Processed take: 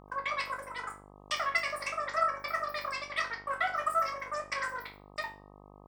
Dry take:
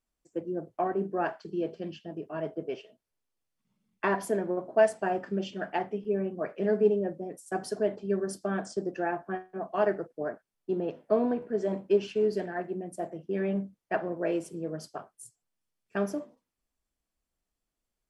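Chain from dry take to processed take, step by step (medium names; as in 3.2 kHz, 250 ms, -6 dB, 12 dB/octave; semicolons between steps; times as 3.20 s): wide varispeed 3.08×; chord resonator D2 major, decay 0.34 s; mains buzz 50 Hz, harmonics 25, -63 dBFS -2 dB/octave; trim +8.5 dB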